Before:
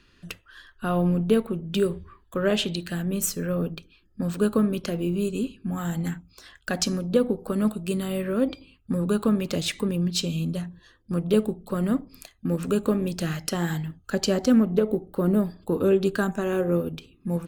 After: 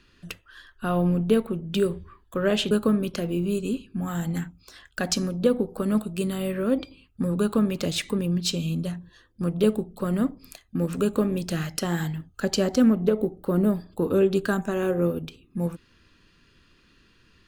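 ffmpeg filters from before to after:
ffmpeg -i in.wav -filter_complex "[0:a]asplit=2[link_01][link_02];[link_01]atrim=end=2.712[link_03];[link_02]atrim=start=4.408[link_04];[link_03][link_04]acrossfade=duration=0.004:curve1=hsin:curve2=hsin" out.wav

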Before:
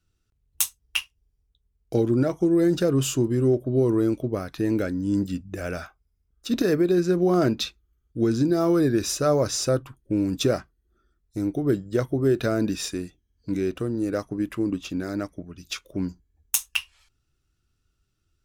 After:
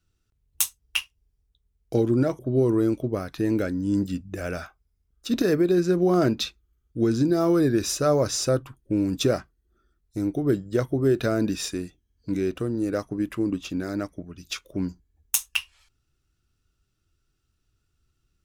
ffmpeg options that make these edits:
ffmpeg -i in.wav -filter_complex "[0:a]asplit=2[link_01][link_02];[link_01]atrim=end=2.392[link_03];[link_02]atrim=start=3.588[link_04];[link_03][link_04]acrossfade=duration=0.004:curve1=hsin:curve2=hsin" out.wav

